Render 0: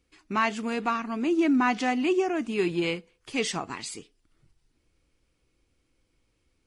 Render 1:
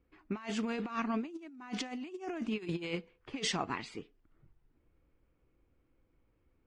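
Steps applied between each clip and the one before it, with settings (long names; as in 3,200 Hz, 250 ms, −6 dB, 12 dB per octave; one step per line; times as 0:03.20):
low-pass that shuts in the quiet parts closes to 1,500 Hz, open at −19.5 dBFS
compressor whose output falls as the input rises −31 dBFS, ratio −0.5
level −5.5 dB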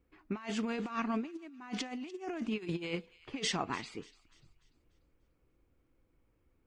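delay with a high-pass on its return 294 ms, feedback 40%, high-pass 2,400 Hz, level −18 dB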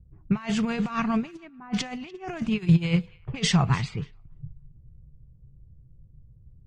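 low-pass that shuts in the quiet parts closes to 340 Hz, open at −35 dBFS
low shelf with overshoot 200 Hz +12.5 dB, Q 3
level +8 dB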